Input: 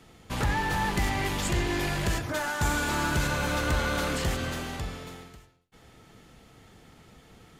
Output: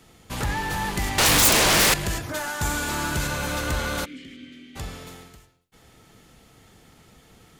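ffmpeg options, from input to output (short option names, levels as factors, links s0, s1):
-filter_complex "[0:a]asettb=1/sr,asplit=3[s0][s1][s2];[s0]atrim=end=1.184[s3];[s1]atrim=start=1.18:end=1.94,asetpts=PTS-STARTPTS,afade=t=in:d=0.004:c=qsin,afade=t=out:st=0.756:d=0.004:c=qsin,aeval=exprs='0.15*sin(PI/2*5.62*val(0)/0.15)':c=same[s4];[s2]atrim=start=1.936[s5];[s3][s4]acrossfade=d=0.004:c1=hsin:c2=qsin[s6];[s6][s5]acrossfade=d=0.004:c1=qsin:c2=hsin,asplit=3[s7][s8][s9];[s7]afade=t=out:st=4.04:d=0.02[s10];[s8]asplit=3[s11][s12][s13];[s11]bandpass=f=270:t=q:w=8,volume=1[s14];[s12]bandpass=f=2290:t=q:w=8,volume=0.501[s15];[s13]bandpass=f=3010:t=q:w=8,volume=0.355[s16];[s14][s15][s16]amix=inputs=3:normalize=0,afade=t=in:st=4.04:d=0.02,afade=t=out:st=4.75:d=0.02[s17];[s9]afade=t=in:st=4.75:d=0.02[s18];[s10][s17][s18]amix=inputs=3:normalize=0,highshelf=f=5700:g=7.5"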